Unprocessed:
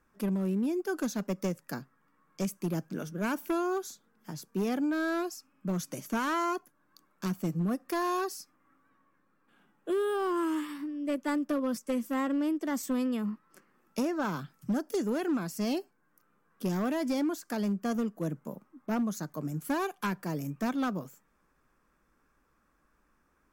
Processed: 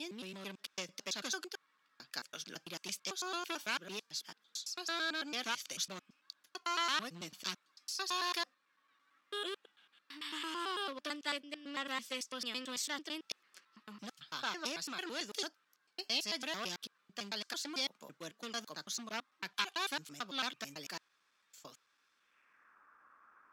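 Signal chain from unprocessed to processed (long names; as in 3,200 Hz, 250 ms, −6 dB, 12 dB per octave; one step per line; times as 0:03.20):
slices reordered back to front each 111 ms, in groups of 7
band-pass filter sweep 3,800 Hz → 1,300 Hz, 0:22.16–0:22.82
level +12.5 dB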